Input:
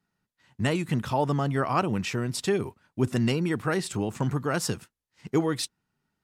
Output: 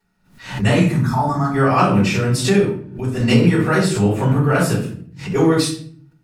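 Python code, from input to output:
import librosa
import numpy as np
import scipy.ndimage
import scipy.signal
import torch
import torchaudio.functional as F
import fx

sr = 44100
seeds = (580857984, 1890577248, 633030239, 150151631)

y = fx.fixed_phaser(x, sr, hz=1200.0, stages=4, at=(0.9, 1.54))
y = fx.level_steps(y, sr, step_db=15, at=(2.6, 3.2))
y = fx.peak_eq(y, sr, hz=5800.0, db=-9.0, octaves=0.94, at=(4.04, 4.75))
y = fx.room_shoebox(y, sr, seeds[0], volume_m3=64.0, walls='mixed', distance_m=3.9)
y = fx.pre_swell(y, sr, db_per_s=110.0)
y = F.gain(torch.from_numpy(y), -4.5).numpy()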